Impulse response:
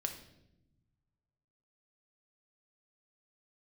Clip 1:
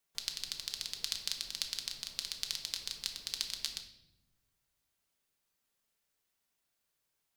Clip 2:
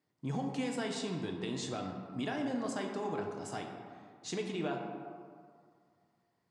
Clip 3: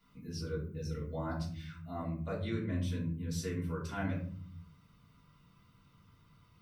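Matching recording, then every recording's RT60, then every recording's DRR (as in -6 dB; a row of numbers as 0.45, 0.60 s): 1; 0.85, 2.2, 0.50 s; 4.0, 1.0, -6.5 dB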